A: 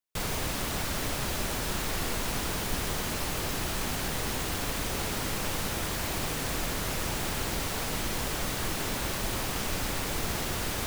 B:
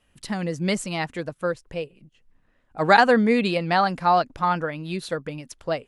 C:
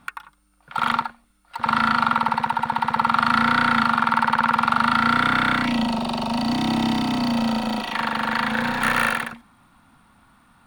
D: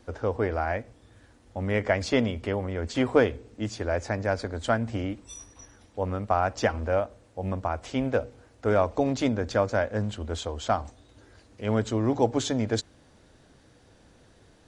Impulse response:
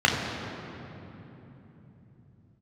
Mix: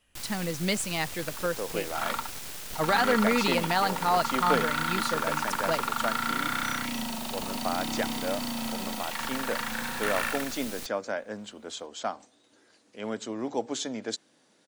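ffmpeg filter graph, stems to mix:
-filter_complex "[0:a]aeval=exprs='abs(val(0))':c=same,volume=-10dB[a];[1:a]alimiter=limit=-12dB:level=0:latency=1,volume=-5dB[b];[2:a]adelay=1200,volume=-13dB[c];[3:a]highpass=f=180:w=0.5412,highpass=f=180:w=1.3066,adelay=1350,volume=-7.5dB[d];[a][b][c][d]amix=inputs=4:normalize=0,highshelf=f=2.2k:g=7.5"

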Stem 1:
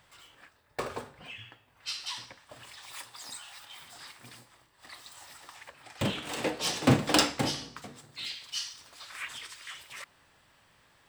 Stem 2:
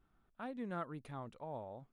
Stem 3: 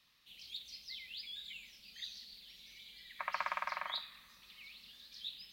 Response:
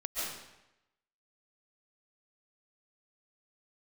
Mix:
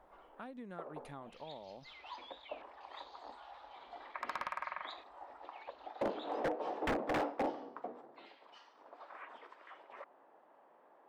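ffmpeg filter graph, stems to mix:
-filter_complex "[0:a]highpass=f=290:w=0.5412,highpass=f=290:w=1.3066,acompressor=threshold=-43dB:ratio=1.5,lowpass=f=770:t=q:w=1.7,volume=2.5dB[a];[1:a]equalizer=f=110:w=2.5:g=-14,acompressor=threshold=-47dB:ratio=10,volume=2.5dB,asplit=2[b][c];[2:a]afwtdn=0.00158,lowpass=2.3k,adelay=950,volume=-1.5dB[d];[c]apad=whole_len=488986[e];[a][e]sidechaincompress=threshold=-58dB:ratio=6:attack=16:release=257[f];[f][b][d]amix=inputs=3:normalize=0,aeval=exprs='0.0422*(abs(mod(val(0)/0.0422+3,4)-2)-1)':c=same"

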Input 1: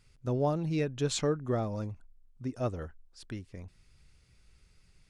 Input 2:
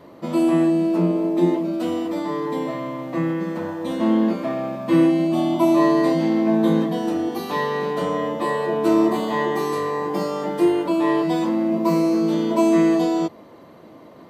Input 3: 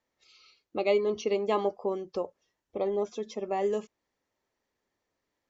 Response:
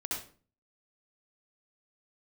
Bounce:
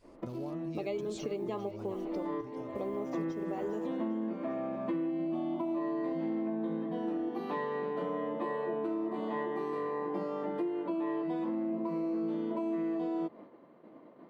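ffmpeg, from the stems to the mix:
-filter_complex "[0:a]acompressor=threshold=-38dB:ratio=3,volume=-4.5dB,afade=t=out:st=2.23:d=0.55:silence=0.251189,asplit=2[a][b];[1:a]agate=range=-33dB:threshold=-38dB:ratio=3:detection=peak,acrossover=split=210 3000:gain=0.0708 1 0.1[c][d][e];[c][d][e]amix=inputs=3:normalize=0,volume=-6dB[f];[2:a]acrusher=bits=8:mix=0:aa=0.5,volume=-7dB,asplit=2[g][h];[h]volume=-14.5dB[i];[b]apad=whole_len=630524[j];[f][j]sidechaincompress=threshold=-59dB:ratio=8:attack=16:release=313[k];[k][g]amix=inputs=2:normalize=0,lowshelf=f=260:g=12,alimiter=limit=-15.5dB:level=0:latency=1:release=402,volume=0dB[l];[i]aecho=0:1:400|800|1200|1600|2000|2400|2800|3200|3600:1|0.57|0.325|0.185|0.106|0.0602|0.0343|0.0195|0.0111[m];[a][l][m]amix=inputs=3:normalize=0,acompressor=threshold=-33dB:ratio=4"

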